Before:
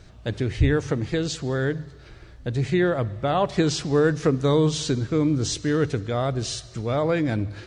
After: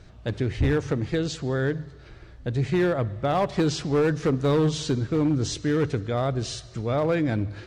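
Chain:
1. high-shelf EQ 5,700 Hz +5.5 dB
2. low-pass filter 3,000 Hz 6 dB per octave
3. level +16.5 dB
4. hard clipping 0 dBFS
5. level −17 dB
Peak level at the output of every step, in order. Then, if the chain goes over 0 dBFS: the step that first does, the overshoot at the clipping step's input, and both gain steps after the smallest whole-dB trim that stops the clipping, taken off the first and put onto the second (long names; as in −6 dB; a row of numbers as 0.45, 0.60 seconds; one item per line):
−7.5, −8.0, +8.5, 0.0, −17.0 dBFS
step 3, 8.5 dB
step 3 +7.5 dB, step 5 −8 dB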